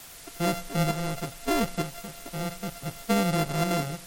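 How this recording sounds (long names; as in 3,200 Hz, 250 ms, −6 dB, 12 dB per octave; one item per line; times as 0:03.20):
a buzz of ramps at a fixed pitch in blocks of 64 samples
tremolo saw up 1.1 Hz, depth 50%
a quantiser's noise floor 8 bits, dither triangular
MP3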